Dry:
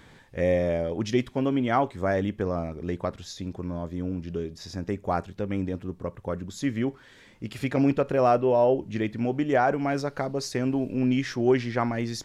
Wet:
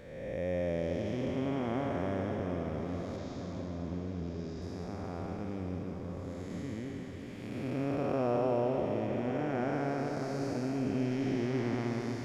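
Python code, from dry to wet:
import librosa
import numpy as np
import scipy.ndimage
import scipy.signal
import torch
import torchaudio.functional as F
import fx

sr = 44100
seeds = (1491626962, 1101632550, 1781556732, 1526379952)

p1 = fx.spec_blur(x, sr, span_ms=551.0)
p2 = fx.lowpass(p1, sr, hz=7300.0, slope=24, at=(3.17, 4.62))
p3 = p2 + fx.echo_diffused(p2, sr, ms=455, feedback_pct=71, wet_db=-8.5, dry=0)
y = F.gain(torch.from_numpy(p3), -5.0).numpy()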